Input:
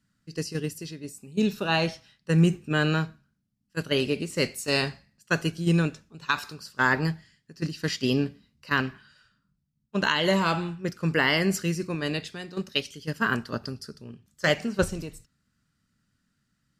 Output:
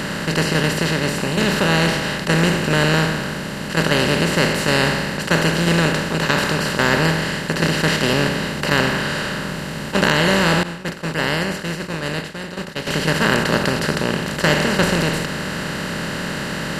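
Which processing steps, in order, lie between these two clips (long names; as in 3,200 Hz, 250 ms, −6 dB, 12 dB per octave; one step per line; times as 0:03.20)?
compressor on every frequency bin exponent 0.2
0:10.63–0:12.87: downward expander −8 dBFS
level −1.5 dB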